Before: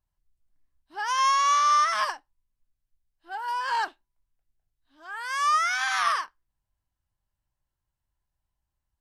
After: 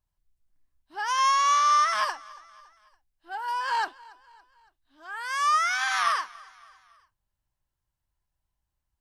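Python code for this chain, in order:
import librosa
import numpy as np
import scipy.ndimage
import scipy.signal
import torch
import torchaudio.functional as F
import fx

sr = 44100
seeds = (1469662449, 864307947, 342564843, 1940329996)

y = fx.echo_feedback(x, sr, ms=281, feedback_pct=51, wet_db=-23)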